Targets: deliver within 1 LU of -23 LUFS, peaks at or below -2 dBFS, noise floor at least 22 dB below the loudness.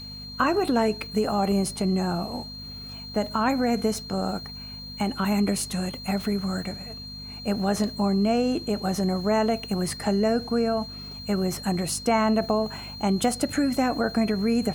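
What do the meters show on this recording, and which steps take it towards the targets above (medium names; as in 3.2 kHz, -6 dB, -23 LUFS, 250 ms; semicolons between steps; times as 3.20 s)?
hum 50 Hz; highest harmonic 250 Hz; hum level -40 dBFS; steady tone 4.2 kHz; tone level -38 dBFS; loudness -25.5 LUFS; peak level -10.0 dBFS; loudness target -23.0 LUFS
-> de-hum 50 Hz, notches 5; band-stop 4.2 kHz, Q 30; trim +2.5 dB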